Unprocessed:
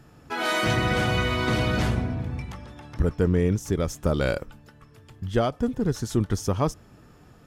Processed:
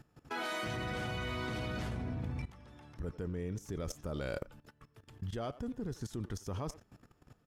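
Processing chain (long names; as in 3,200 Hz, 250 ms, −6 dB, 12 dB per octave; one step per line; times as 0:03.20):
far-end echo of a speakerphone 90 ms, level −16 dB
output level in coarse steps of 17 dB
level −3.5 dB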